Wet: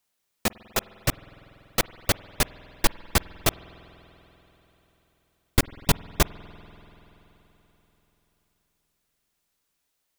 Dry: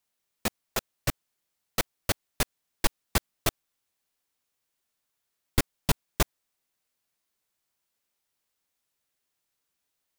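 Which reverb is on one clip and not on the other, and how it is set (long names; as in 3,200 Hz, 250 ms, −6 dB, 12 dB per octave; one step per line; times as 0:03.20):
spring reverb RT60 4 s, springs 48 ms, chirp 30 ms, DRR 17.5 dB
level +4 dB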